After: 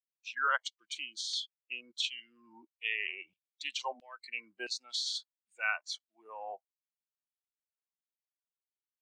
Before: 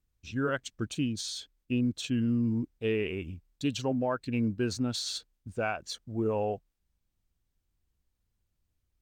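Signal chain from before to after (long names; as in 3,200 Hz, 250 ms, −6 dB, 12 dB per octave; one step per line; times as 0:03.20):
three-way crossover with the lows and the highs turned down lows −13 dB, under 270 Hz, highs −17 dB, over 7,200 Hz
noise reduction from a noise print of the clip's start 21 dB
auto-filter high-pass saw down 1.5 Hz 790–3,500 Hz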